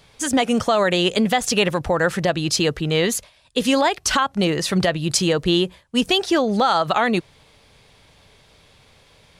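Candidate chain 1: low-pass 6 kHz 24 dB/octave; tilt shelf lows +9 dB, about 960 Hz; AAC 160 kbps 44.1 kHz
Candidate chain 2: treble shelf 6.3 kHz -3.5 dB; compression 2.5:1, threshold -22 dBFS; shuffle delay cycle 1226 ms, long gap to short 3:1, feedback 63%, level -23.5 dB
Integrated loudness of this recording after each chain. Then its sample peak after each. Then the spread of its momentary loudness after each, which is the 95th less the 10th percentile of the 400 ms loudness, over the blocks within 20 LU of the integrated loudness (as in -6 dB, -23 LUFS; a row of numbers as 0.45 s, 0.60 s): -15.5 LUFS, -24.5 LUFS; -2.5 dBFS, -9.0 dBFS; 5 LU, 10 LU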